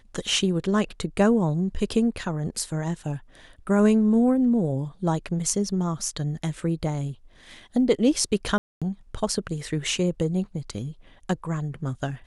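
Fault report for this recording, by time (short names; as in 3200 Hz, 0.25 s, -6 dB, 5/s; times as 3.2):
8.58–8.82 gap 0.236 s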